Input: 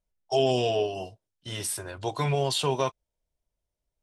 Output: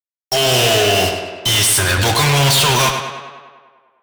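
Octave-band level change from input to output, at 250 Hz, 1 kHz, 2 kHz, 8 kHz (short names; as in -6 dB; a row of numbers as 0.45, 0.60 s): +10.5, +13.0, +22.5, +19.5 dB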